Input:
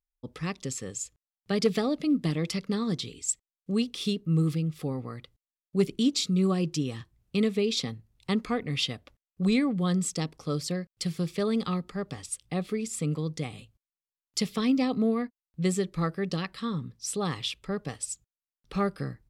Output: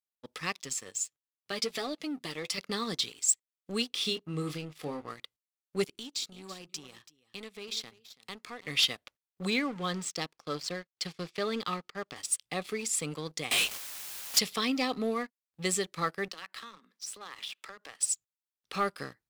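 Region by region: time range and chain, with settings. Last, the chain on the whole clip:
0.56–2.58 flange 1.4 Hz, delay 5.8 ms, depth 3.3 ms, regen +35% + compressor 2.5:1, threshold -28 dBFS
3.89–5.1 high shelf 6200 Hz -8.5 dB + doubler 27 ms -8.5 dB
5.84–8.67 compressor 2:1, threshold -46 dBFS + echo 0.332 s -12.5 dB
9.5–12.16 G.711 law mismatch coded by A + air absorption 92 m
13.51–14.39 HPF 670 Hz 6 dB/oct + power-law curve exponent 0.35 + frequency shift -53 Hz
16.28–18 steep high-pass 180 Hz 72 dB/oct + bell 1500 Hz +7.5 dB 1.8 oct + compressor 5:1, threshold -43 dBFS
whole clip: HPF 1200 Hz 6 dB/oct; sample leveller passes 2; gain -1.5 dB

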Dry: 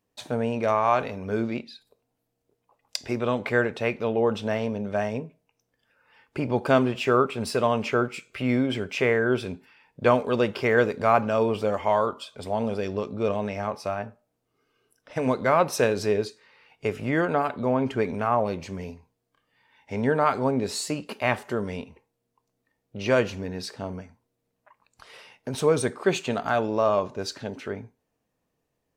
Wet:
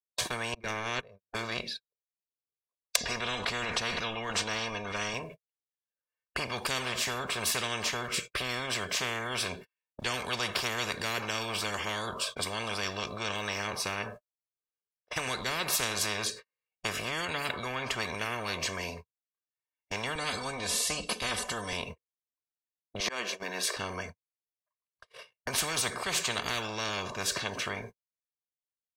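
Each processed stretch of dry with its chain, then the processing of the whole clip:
0.54–1.35 gate -24 dBFS, range -34 dB + high shelf 2000 Hz -6.5 dB
2.96–5.14 air absorption 59 m + comb 4.2 ms, depth 68% + sustainer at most 73 dB/s
20.15–21.73 steep low-pass 11000 Hz + bell 1600 Hz -9.5 dB 1.6 oct + comb 4 ms, depth 93%
23–23.77 HPF 310 Hz 24 dB/oct + auto swell 0.488 s
whole clip: comb 1.8 ms, depth 82%; gate -42 dBFS, range -52 dB; spectral compressor 10:1; gain -3.5 dB

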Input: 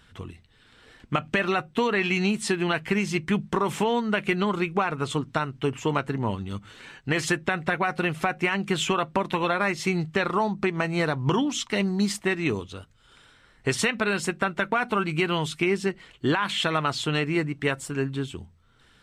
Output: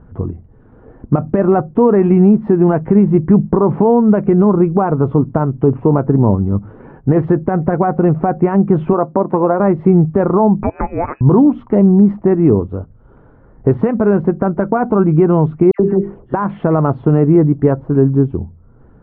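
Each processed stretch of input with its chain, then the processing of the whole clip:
8.93–9.6 HPF 300 Hz 6 dB/oct + bell 3300 Hz -11 dB 0.73 oct
10.63–11.21 low shelf 280 Hz -8 dB + inverted band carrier 2700 Hz
15.71–16.34 notches 50/100/150/200/250/300/350/400 Hz + transient shaper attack -12 dB, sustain +2 dB + dispersion lows, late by 86 ms, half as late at 1700 Hz
whole clip: Bessel low-pass 600 Hz, order 4; maximiser +19 dB; gain -1 dB

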